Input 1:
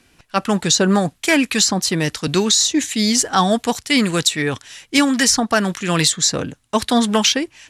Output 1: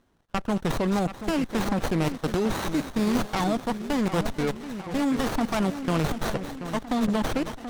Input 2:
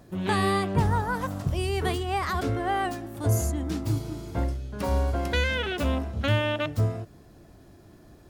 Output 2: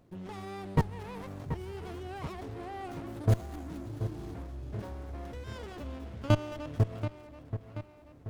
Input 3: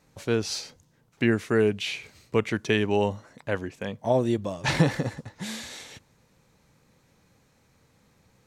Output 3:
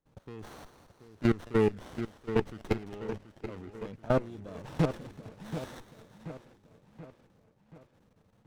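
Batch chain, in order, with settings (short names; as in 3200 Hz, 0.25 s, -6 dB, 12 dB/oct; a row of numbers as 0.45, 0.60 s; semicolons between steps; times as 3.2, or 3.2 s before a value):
level quantiser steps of 21 dB; split-band echo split 2300 Hz, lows 0.731 s, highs 0.218 s, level -10 dB; running maximum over 17 samples; normalise peaks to -12 dBFS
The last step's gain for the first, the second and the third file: -2.0, +1.0, -2.0 dB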